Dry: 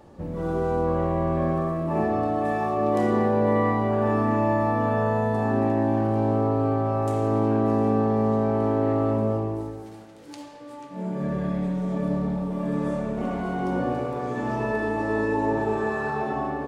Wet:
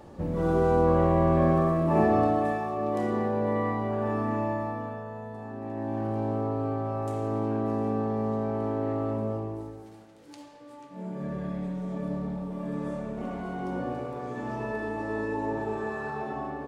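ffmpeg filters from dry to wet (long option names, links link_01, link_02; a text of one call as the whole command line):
ffmpeg -i in.wav -af "volume=11dB,afade=type=out:start_time=2.23:duration=0.4:silence=0.398107,afade=type=out:start_time=4.39:duration=0.64:silence=0.334965,afade=type=in:start_time=5.6:duration=0.48:silence=0.354813" out.wav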